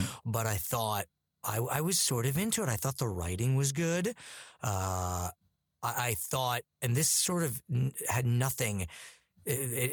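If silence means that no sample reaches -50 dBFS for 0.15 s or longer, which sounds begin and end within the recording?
1.43–5.32 s
5.83–6.61 s
6.82–9.15 s

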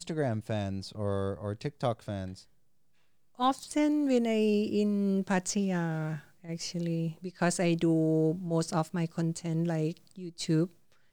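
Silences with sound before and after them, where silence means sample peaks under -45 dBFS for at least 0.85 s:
2.41–3.39 s

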